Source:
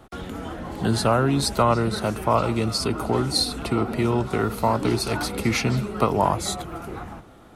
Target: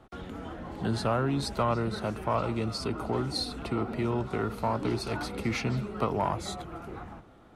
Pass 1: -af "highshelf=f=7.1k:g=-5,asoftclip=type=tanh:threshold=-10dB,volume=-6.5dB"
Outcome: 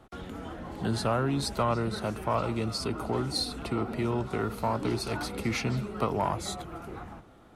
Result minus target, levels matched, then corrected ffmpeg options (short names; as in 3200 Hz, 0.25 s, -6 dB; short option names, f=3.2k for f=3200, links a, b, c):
8000 Hz band +3.5 dB
-af "highshelf=f=7.1k:g=-12.5,asoftclip=type=tanh:threshold=-10dB,volume=-6.5dB"